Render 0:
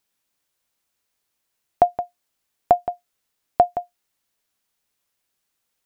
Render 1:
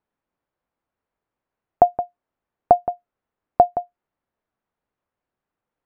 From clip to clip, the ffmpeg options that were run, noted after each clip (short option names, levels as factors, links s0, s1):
-af "lowpass=1200,volume=1.33"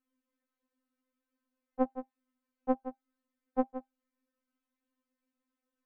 -af "equalizer=f=250:t=o:w=0.33:g=8,equalizer=f=400:t=o:w=0.33:g=10,equalizer=f=800:t=o:w=0.33:g=-12,afftfilt=real='re*3.46*eq(mod(b,12),0)':imag='im*3.46*eq(mod(b,12),0)':win_size=2048:overlap=0.75,volume=0.794"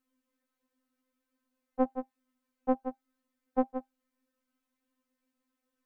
-af "alimiter=limit=0.0944:level=0:latency=1:release=31,volume=1.58"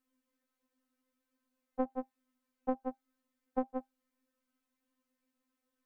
-af "acompressor=threshold=0.0447:ratio=6,volume=0.841"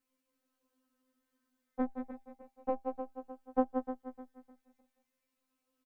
-filter_complex "[0:a]asplit=2[s0][s1];[s1]aecho=0:1:305|610|915|1220:0.316|0.117|0.0433|0.016[s2];[s0][s2]amix=inputs=2:normalize=0,asplit=2[s3][s4];[s4]adelay=10.8,afreqshift=-0.38[s5];[s3][s5]amix=inputs=2:normalize=1,volume=1.78"